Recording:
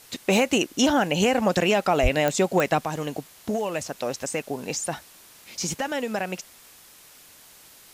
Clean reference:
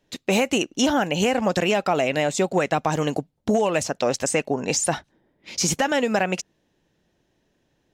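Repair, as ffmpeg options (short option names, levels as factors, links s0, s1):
-filter_complex "[0:a]adeclick=t=4,asplit=3[s0][s1][s2];[s0]afade=t=out:st=2.02:d=0.02[s3];[s1]highpass=f=140:w=0.5412,highpass=f=140:w=1.3066,afade=t=in:st=2.02:d=0.02,afade=t=out:st=2.14:d=0.02[s4];[s2]afade=t=in:st=2.14:d=0.02[s5];[s3][s4][s5]amix=inputs=3:normalize=0,afwtdn=0.0035,asetnsamples=n=441:p=0,asendcmd='2.85 volume volume 6.5dB',volume=1"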